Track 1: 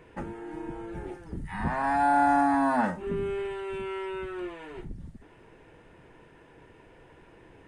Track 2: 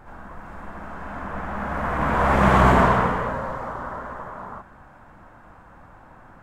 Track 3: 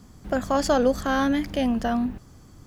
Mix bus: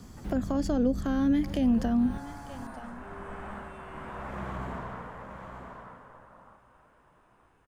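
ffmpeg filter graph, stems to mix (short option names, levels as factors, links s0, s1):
-filter_complex "[0:a]alimiter=limit=0.0794:level=0:latency=1:release=218,aemphasis=mode=production:type=75kf,volume=0.133[s0];[1:a]adelay=1950,volume=0.299,afade=t=out:st=3.52:d=0.21:silence=0.354813,asplit=2[s1][s2];[s2]volume=0.299[s3];[2:a]volume=1.19,asplit=2[s4][s5];[s5]volume=0.0708[s6];[s3][s6]amix=inputs=2:normalize=0,aecho=0:1:926:1[s7];[s0][s1][s4][s7]amix=inputs=4:normalize=0,acrossover=split=340[s8][s9];[s9]acompressor=threshold=0.0158:ratio=10[s10];[s8][s10]amix=inputs=2:normalize=0"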